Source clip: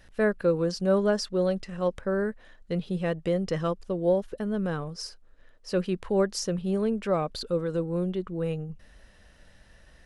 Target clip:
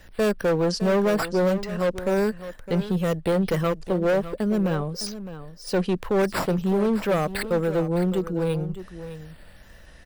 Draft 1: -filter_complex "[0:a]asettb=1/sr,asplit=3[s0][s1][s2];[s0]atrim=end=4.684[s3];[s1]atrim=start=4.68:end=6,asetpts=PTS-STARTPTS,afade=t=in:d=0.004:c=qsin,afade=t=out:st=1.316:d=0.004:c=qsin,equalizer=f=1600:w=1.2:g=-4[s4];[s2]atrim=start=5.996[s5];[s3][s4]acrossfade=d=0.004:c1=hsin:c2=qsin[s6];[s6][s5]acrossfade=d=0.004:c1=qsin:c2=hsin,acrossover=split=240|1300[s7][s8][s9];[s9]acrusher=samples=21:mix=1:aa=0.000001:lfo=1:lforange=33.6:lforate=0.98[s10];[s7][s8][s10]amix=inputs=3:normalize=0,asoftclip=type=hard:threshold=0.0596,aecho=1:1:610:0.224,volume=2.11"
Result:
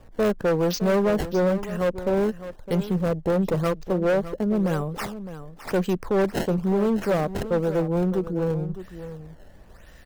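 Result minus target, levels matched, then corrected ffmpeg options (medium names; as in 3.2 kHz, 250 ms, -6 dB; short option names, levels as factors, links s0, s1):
decimation with a swept rate: distortion +16 dB
-filter_complex "[0:a]asettb=1/sr,asplit=3[s0][s1][s2];[s0]atrim=end=4.684[s3];[s1]atrim=start=4.68:end=6,asetpts=PTS-STARTPTS,afade=t=in:d=0.004:c=qsin,afade=t=out:st=1.316:d=0.004:c=qsin,equalizer=f=1600:w=1.2:g=-4[s4];[s2]atrim=start=5.996[s5];[s3][s4]acrossfade=d=0.004:c1=hsin:c2=qsin[s6];[s6][s5]acrossfade=d=0.004:c1=qsin:c2=hsin,acrossover=split=240|1300[s7][s8][s9];[s9]acrusher=samples=4:mix=1:aa=0.000001:lfo=1:lforange=6.4:lforate=0.98[s10];[s7][s8][s10]amix=inputs=3:normalize=0,asoftclip=type=hard:threshold=0.0596,aecho=1:1:610:0.224,volume=2.11"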